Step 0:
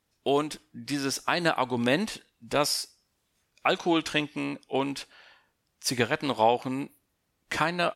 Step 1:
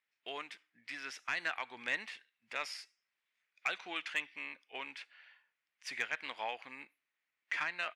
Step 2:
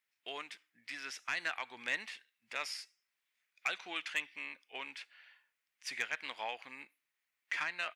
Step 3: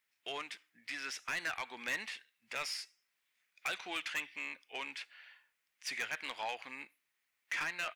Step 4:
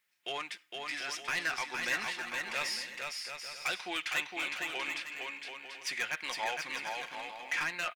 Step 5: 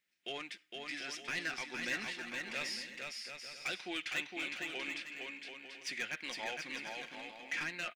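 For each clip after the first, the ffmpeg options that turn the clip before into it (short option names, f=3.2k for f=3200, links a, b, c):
-af "bandpass=f=2.1k:t=q:w=2.7:csg=0,asoftclip=type=tanh:threshold=-22dB,volume=-1dB"
-af "highshelf=f=4.4k:g=7,volume=-1.5dB"
-af "bandreject=f=60:t=h:w=6,bandreject=f=120:t=h:w=6,asoftclip=type=tanh:threshold=-34dB,volume=3.5dB"
-filter_complex "[0:a]aecho=1:1:5.6:0.36,asplit=2[a][b];[b]aecho=0:1:460|736|901.6|1001|1061:0.631|0.398|0.251|0.158|0.1[c];[a][c]amix=inputs=2:normalize=0,volume=3dB"
-af "equalizer=f=250:t=o:w=1:g=7,equalizer=f=1k:t=o:w=1:g=-9,equalizer=f=16k:t=o:w=1:g=-10,volume=-2.5dB"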